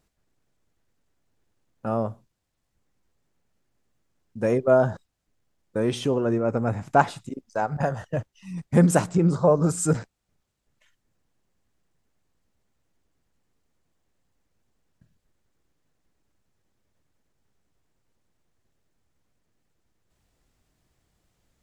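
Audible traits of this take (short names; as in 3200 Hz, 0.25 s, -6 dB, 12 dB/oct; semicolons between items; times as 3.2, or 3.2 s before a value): noise floor -77 dBFS; spectral tilt -6.0 dB/oct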